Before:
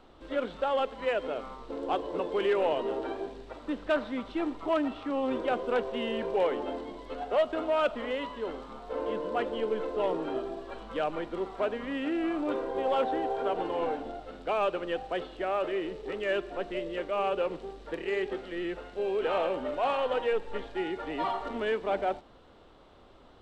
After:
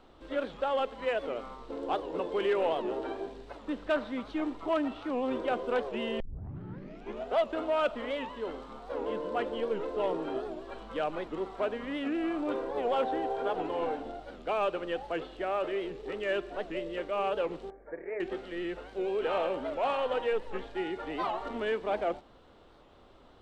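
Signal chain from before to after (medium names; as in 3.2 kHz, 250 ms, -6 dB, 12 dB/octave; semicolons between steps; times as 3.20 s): 6.20 s: tape start 1.14 s; 17.70–18.21 s: rippled Chebyshev low-pass 2.3 kHz, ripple 9 dB; warped record 78 rpm, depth 160 cents; trim -1.5 dB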